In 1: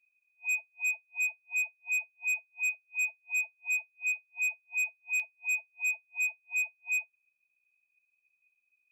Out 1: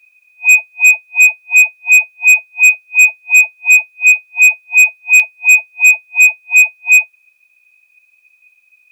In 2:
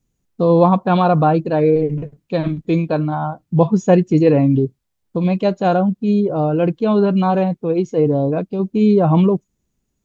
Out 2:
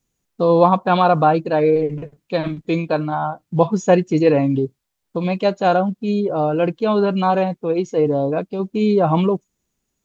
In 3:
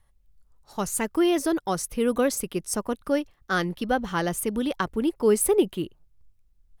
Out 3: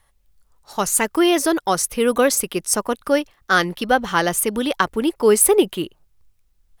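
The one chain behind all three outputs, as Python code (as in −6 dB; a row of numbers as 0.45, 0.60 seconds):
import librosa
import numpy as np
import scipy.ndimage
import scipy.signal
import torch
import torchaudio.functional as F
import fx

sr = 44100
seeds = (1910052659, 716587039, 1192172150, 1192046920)

y = fx.low_shelf(x, sr, hz=360.0, db=-10.5)
y = librosa.util.normalize(y) * 10.0 ** (-1.5 / 20.0)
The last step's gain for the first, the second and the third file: +23.5, +3.0, +10.0 decibels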